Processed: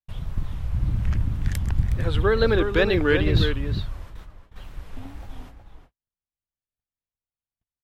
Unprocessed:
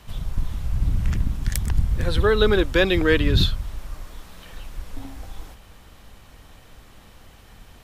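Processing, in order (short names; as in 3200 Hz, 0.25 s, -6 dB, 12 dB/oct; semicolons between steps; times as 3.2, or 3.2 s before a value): gate -36 dBFS, range -53 dB; bell 110 Hz +5.5 dB 1.1 oct; outdoor echo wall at 62 m, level -7 dB; wow and flutter 120 cents; tone controls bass -2 dB, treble -8 dB; gain -2 dB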